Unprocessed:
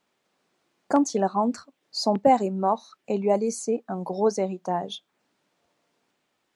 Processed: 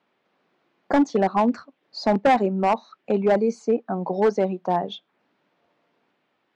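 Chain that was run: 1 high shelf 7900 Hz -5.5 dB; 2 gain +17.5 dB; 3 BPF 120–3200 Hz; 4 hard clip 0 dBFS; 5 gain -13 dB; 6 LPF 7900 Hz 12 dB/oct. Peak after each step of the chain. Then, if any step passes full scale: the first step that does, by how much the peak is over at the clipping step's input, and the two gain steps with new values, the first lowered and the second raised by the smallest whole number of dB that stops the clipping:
-7.0, +10.5, +10.0, 0.0, -13.0, -13.0 dBFS; step 2, 10.0 dB; step 2 +7.5 dB, step 5 -3 dB

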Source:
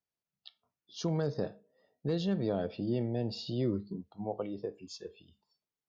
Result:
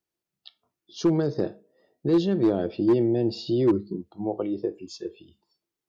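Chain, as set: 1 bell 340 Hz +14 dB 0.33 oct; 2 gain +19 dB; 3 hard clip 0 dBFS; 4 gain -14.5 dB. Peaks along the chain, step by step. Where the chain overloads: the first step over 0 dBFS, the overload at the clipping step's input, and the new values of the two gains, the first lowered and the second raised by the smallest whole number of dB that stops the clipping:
-13.0, +6.0, 0.0, -14.5 dBFS; step 2, 6.0 dB; step 2 +13 dB, step 4 -8.5 dB

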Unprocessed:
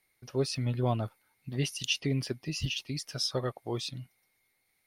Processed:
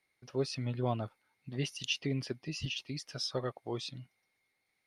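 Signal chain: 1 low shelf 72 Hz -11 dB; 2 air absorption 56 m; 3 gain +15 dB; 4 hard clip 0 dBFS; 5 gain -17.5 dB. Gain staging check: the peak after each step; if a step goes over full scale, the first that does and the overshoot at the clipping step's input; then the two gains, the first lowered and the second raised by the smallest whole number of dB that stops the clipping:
-16.0, -17.0, -2.0, -2.0, -19.5 dBFS; no overload

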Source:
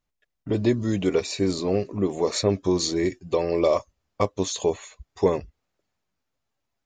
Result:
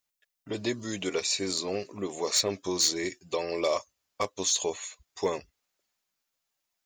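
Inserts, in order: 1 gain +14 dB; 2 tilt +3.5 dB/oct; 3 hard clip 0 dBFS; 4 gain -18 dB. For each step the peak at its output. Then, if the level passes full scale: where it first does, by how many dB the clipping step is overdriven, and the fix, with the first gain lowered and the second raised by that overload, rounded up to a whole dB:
+7.0, +8.5, 0.0, -18.0 dBFS; step 1, 8.5 dB; step 1 +5 dB, step 4 -9 dB

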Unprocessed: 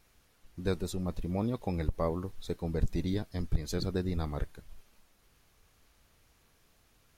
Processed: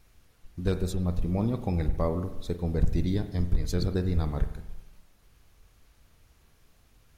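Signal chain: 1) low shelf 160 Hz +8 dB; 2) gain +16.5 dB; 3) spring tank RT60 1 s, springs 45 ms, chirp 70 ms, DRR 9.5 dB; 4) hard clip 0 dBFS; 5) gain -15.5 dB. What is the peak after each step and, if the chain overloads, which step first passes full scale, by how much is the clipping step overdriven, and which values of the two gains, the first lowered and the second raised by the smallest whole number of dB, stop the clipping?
-8.5, +8.0, +8.0, 0.0, -15.5 dBFS; step 2, 8.0 dB; step 2 +8.5 dB, step 5 -7.5 dB

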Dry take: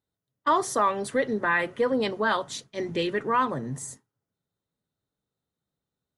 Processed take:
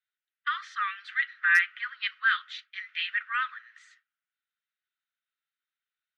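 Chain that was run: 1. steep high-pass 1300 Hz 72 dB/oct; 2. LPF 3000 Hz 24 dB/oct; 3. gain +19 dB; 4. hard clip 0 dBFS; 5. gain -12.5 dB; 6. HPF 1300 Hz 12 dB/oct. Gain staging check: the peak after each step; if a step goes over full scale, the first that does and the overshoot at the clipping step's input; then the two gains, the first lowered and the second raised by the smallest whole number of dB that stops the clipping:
-15.5, -15.5, +3.5, 0.0, -12.5, -11.0 dBFS; step 3, 3.5 dB; step 3 +15 dB, step 5 -8.5 dB

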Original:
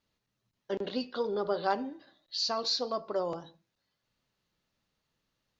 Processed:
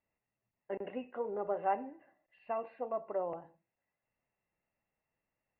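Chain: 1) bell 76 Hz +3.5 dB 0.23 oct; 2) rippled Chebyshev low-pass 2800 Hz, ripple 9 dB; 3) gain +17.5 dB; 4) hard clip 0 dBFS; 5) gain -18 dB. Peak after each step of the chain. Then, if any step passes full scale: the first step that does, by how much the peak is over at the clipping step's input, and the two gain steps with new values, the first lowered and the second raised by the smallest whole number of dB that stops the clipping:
-14.5, -19.5, -2.0, -2.0, -20.0 dBFS; no overload

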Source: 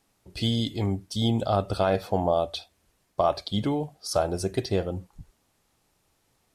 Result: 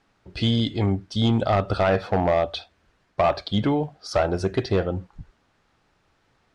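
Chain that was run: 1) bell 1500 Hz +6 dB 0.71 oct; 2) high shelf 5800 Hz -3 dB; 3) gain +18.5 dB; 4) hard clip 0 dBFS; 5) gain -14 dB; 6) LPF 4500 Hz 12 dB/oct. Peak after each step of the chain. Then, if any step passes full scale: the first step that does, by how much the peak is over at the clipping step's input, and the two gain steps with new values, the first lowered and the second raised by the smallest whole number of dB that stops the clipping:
-9.0, -9.0, +9.5, 0.0, -14.0, -13.5 dBFS; step 3, 9.5 dB; step 3 +8.5 dB, step 5 -4 dB

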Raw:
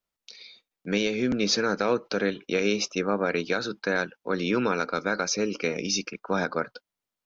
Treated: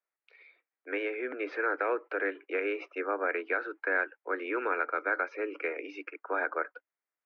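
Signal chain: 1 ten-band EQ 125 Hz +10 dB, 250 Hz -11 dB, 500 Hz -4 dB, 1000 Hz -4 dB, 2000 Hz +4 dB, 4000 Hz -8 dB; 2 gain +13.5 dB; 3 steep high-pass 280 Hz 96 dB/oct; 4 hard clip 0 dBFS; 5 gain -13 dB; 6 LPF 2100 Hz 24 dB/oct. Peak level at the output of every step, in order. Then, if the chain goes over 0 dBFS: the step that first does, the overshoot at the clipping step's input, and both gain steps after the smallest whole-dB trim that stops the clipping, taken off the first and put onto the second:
-14.0, -0.5, -2.0, -2.0, -15.0, -16.0 dBFS; no overload

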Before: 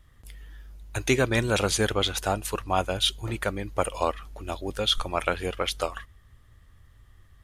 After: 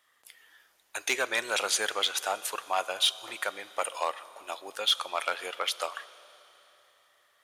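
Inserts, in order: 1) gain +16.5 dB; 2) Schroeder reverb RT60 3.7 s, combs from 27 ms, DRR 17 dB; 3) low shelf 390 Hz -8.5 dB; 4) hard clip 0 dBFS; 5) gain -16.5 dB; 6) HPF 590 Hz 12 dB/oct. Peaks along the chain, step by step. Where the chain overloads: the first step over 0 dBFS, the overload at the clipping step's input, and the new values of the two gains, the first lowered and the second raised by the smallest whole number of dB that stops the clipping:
+9.0, +9.0, +9.0, 0.0, -16.5, -13.0 dBFS; step 1, 9.0 dB; step 1 +7.5 dB, step 5 -7.5 dB

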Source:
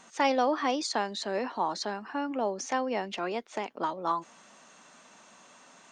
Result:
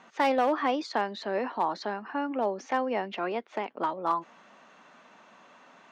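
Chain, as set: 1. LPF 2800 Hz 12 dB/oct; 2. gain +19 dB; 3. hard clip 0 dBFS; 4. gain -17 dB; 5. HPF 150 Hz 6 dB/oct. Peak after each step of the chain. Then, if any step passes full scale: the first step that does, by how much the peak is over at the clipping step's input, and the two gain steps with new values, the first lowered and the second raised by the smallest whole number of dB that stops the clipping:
-14.5, +4.5, 0.0, -17.0, -15.5 dBFS; step 2, 4.5 dB; step 2 +14 dB, step 4 -12 dB

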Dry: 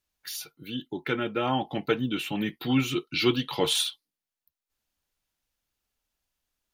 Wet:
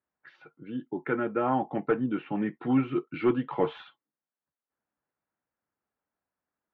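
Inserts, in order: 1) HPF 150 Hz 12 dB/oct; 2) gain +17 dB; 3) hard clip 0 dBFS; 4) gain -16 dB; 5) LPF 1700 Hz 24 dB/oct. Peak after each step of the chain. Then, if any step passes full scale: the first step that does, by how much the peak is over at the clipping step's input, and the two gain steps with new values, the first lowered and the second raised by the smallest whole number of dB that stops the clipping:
-10.0, +7.0, 0.0, -16.0, -15.0 dBFS; step 2, 7.0 dB; step 2 +10 dB, step 4 -9 dB

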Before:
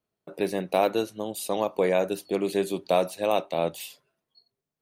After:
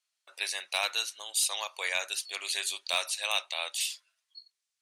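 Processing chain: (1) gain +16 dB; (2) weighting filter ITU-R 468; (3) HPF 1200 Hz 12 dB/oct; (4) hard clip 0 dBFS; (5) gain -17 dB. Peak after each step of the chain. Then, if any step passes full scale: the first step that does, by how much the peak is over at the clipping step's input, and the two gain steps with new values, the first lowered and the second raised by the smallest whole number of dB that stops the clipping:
+6.5, +8.5, +4.0, 0.0, -17.0 dBFS; step 1, 4.0 dB; step 1 +12 dB, step 5 -13 dB

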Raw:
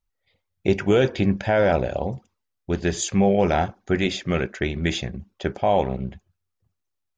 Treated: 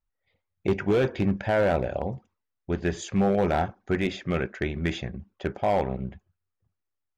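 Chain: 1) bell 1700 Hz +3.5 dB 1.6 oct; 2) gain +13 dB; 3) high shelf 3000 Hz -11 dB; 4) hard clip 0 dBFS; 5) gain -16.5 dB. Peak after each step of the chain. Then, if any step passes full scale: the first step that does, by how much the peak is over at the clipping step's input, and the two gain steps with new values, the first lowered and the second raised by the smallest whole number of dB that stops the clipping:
-6.5, +6.5, +6.0, 0.0, -16.5 dBFS; step 2, 6.0 dB; step 2 +7 dB, step 5 -10.5 dB

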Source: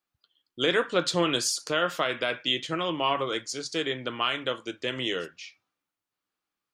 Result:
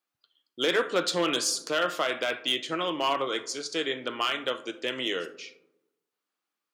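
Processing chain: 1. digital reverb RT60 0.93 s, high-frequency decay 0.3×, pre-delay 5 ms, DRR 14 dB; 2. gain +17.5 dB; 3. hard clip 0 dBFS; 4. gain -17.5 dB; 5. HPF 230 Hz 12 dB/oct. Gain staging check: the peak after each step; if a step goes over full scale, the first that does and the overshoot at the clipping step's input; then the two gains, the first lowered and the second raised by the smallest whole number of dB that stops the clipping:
-11.5, +6.0, 0.0, -17.5, -13.5 dBFS; step 2, 6.0 dB; step 2 +11.5 dB, step 4 -11.5 dB

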